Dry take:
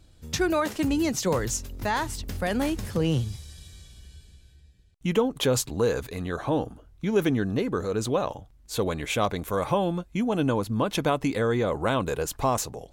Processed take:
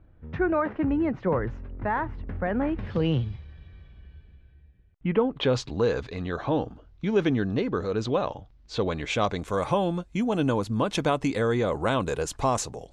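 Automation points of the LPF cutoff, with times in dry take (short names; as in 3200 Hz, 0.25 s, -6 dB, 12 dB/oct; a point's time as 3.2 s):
LPF 24 dB/oct
2.66 s 1900 Hz
2.98 s 4000 Hz
3.5 s 2300 Hz
5.17 s 2300 Hz
5.63 s 5100 Hz
8.8 s 5100 Hz
9.66 s 9100 Hz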